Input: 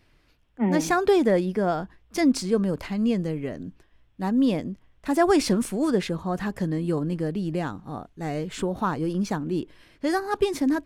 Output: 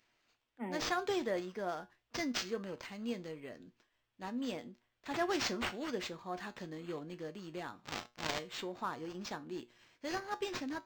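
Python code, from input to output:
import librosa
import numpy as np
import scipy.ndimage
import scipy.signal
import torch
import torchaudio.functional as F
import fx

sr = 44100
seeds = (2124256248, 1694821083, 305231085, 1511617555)

y = fx.halfwave_hold(x, sr, at=(7.84, 8.38), fade=0.02)
y = fx.riaa(y, sr, side='recording')
y = fx.comb_fb(y, sr, f0_hz=120.0, decay_s=0.24, harmonics='all', damping=0.0, mix_pct=60)
y = np.interp(np.arange(len(y)), np.arange(len(y))[::4], y[::4])
y = y * librosa.db_to_amplitude(-6.5)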